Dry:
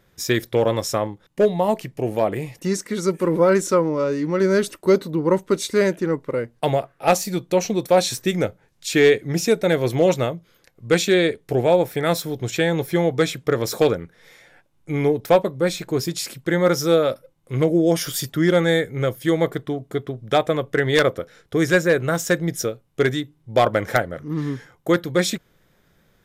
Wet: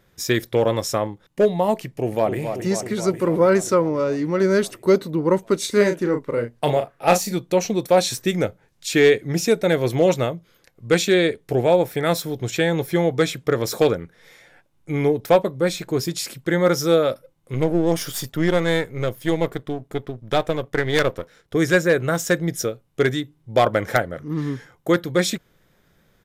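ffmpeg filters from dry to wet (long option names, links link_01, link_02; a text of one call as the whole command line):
ffmpeg -i in.wav -filter_complex "[0:a]asplit=2[link_01][link_02];[link_02]afade=type=in:start_time=1.85:duration=0.01,afade=type=out:start_time=2.39:duration=0.01,aecho=0:1:270|540|810|1080|1350|1620|1890|2160|2430|2700|2970|3240:0.421697|0.316272|0.237204|0.177903|0.133427|0.100071|0.0750529|0.0562897|0.0422173|0.0316629|0.0237472|0.0178104[link_03];[link_01][link_03]amix=inputs=2:normalize=0,asettb=1/sr,asplit=3[link_04][link_05][link_06];[link_04]atrim=end=5.594[link_07];[link_05]atrim=start=5.59:end=7.33,asetpts=PTS-STARTPTS,afade=type=in:duration=0.004:curve=qsin,afade=type=out:start_time=1.736:duration=0.004:curve=qsin,asplit=2[link_08][link_09];[link_09]adelay=34,volume=-6.5dB[link_10];[link_08][link_10]amix=inputs=2:normalize=0,atrim=end_sample=76734[link_11];[link_06]atrim=start=7.326[link_12];[link_07][link_11]acrossfade=duration=0.004:curve1=hsin:curve2=qsin[link_13];[link_13][link_12]acrossfade=duration=0.004:curve1=qsin:curve2=hsin,asettb=1/sr,asplit=3[link_14][link_15][link_16];[link_14]atrim=end=17.544[link_17];[link_15]atrim=start=17.54:end=21.55,asetpts=PTS-STARTPTS,afade=type=in:duration=0.004:curve=qsin,afade=type=out:start_time=4.006:duration=0.004:curve=qsin,aeval=exprs='if(lt(val(0),0),0.447*val(0),val(0))':channel_layout=same[link_18];[link_16]atrim=start=21.546[link_19];[link_17][link_18]acrossfade=duration=0.004:curve1=hsin:curve2=qsin[link_20];[link_20][link_19]acrossfade=duration=0.004:curve1=qsin:curve2=hsin" out.wav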